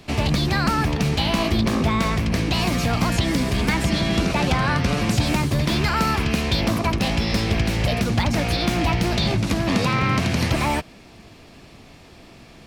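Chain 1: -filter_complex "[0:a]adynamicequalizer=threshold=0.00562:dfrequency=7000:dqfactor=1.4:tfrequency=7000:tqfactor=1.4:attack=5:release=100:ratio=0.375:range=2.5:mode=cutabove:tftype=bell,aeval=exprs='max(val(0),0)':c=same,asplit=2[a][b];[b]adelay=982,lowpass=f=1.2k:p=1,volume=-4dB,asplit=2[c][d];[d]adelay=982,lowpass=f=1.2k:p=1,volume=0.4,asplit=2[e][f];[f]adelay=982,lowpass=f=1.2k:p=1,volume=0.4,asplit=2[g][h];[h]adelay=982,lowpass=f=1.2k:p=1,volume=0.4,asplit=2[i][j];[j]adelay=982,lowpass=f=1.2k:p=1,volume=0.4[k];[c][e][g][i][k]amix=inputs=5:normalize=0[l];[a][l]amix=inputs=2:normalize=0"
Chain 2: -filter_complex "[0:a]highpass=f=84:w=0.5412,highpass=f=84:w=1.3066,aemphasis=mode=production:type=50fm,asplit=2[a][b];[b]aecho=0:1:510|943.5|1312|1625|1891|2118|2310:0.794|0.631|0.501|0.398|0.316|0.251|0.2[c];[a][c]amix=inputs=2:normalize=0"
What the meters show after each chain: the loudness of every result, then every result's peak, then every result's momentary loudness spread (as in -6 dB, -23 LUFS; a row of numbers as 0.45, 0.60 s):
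-25.0, -16.5 LUFS; -6.5, -1.0 dBFS; 6, 4 LU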